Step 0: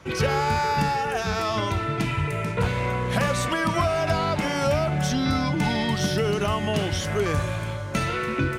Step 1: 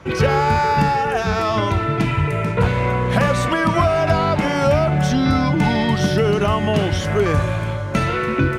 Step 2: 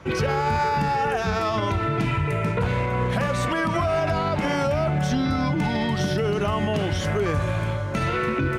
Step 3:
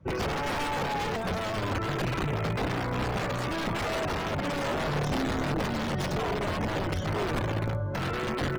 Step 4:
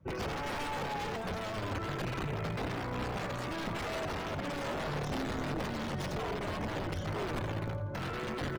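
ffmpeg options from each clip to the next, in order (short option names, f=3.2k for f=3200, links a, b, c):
-af "highshelf=f=3.4k:g=-9,volume=7dB"
-af "alimiter=limit=-12.5dB:level=0:latency=1:release=71,volume=-2.5dB"
-af "aeval=exprs='(mod(7.94*val(0)+1,2)-1)/7.94':c=same,tiltshelf=f=900:g=3.5,afftdn=nr=16:nf=-35,volume=-6dB"
-af "aecho=1:1:85|170|255|340:0.211|0.0824|0.0321|0.0125,volume=-6.5dB"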